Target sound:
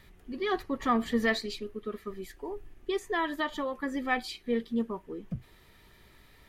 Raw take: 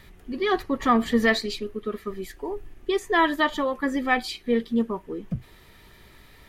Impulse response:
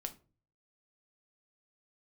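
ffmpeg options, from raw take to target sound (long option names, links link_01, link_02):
-filter_complex "[0:a]asettb=1/sr,asplit=3[link_01][link_02][link_03];[link_01]atrim=end=3.114[link_04];[link_02]atrim=start=3.11:end=3.97,asetpts=PTS-STARTPTS,afade=type=in:duration=0.004:curve=qsin,afade=type=out:start_time=0.856:duration=0.004:curve=qsin,acompressor=threshold=-22dB:ratio=2[link_05];[link_03]atrim=start=3.966[link_06];[link_04][link_05]acrossfade=duration=0.004:curve1=hsin:curve2=qsin[link_07];[link_07][link_06]acrossfade=duration=0.004:curve1=qsin:curve2=hsin,volume=-6.5dB"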